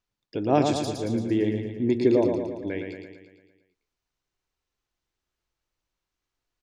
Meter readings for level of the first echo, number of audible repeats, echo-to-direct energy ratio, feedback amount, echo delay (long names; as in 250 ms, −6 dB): −5.0 dB, 7, −3.0 dB, 58%, 113 ms